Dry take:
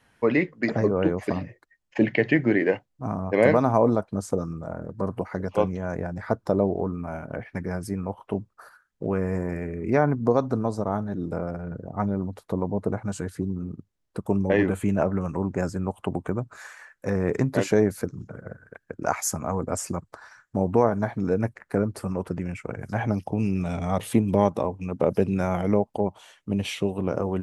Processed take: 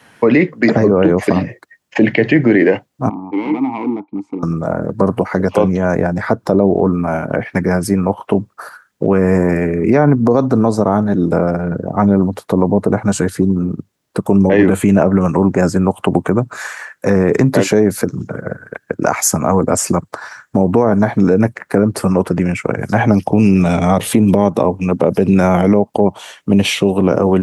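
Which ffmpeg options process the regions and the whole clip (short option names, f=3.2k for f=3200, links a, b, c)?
-filter_complex "[0:a]asettb=1/sr,asplit=3[a][b][c];[a]atrim=end=3.094[d];[b]atrim=start=3.09:end=4.43,asetpts=PTS-STARTPTS,afade=t=in:d=0.004:c=qsin,afade=t=out:st=1.336:d=0.004:c=qsin,highshelf=f=3.8k:g=-11,volume=17dB,asoftclip=hard,volume=-17dB,asplit=3[e][f][g];[e]bandpass=f=300:t=q:w=8,volume=0dB[h];[f]bandpass=f=870:t=q:w=8,volume=-6dB[i];[g]bandpass=f=2.24k:t=q:w=8,volume=-9dB[j];[h][i][j]amix=inputs=3:normalize=0[k];[c]atrim=start=4.426[l];[d][k]acrossfade=d=0.004:c1=hsin:c2=qsin[m];[m][l]acrossfade=d=0.004:c1=qsin:c2=hsin,highpass=130,acrossover=split=420[n][o];[o]acompressor=threshold=-32dB:ratio=1.5[p];[n][p]amix=inputs=2:normalize=0,alimiter=level_in=17.5dB:limit=-1dB:release=50:level=0:latency=1,volume=-1dB"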